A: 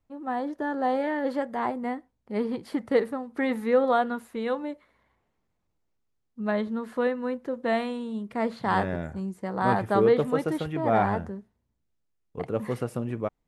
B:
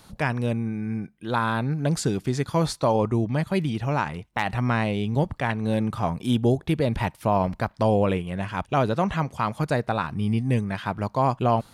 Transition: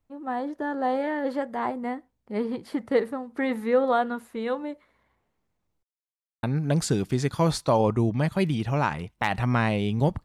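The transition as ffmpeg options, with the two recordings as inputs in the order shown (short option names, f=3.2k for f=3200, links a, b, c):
-filter_complex "[0:a]apad=whole_dur=10.24,atrim=end=10.24,asplit=2[a][b];[a]atrim=end=5.83,asetpts=PTS-STARTPTS,afade=t=out:st=5.826:d=0.004:c=hsin[c];[b]atrim=start=5.83:end=6.43,asetpts=PTS-STARTPTS,volume=0[d];[1:a]atrim=start=1.58:end=5.39,asetpts=PTS-STARTPTS,afade=t=in:d=0.004:c=hsin[e];[c][d][e]concat=n=3:v=0:a=1"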